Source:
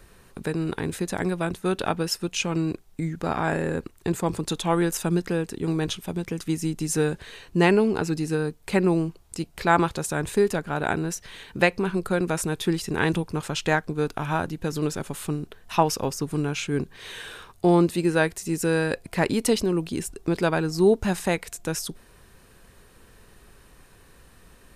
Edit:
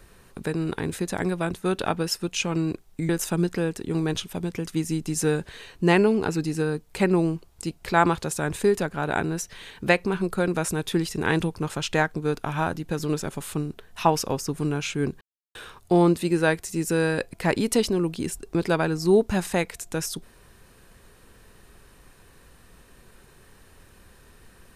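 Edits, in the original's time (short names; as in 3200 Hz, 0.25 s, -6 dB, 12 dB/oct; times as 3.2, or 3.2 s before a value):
3.09–4.82 cut
16.94–17.28 mute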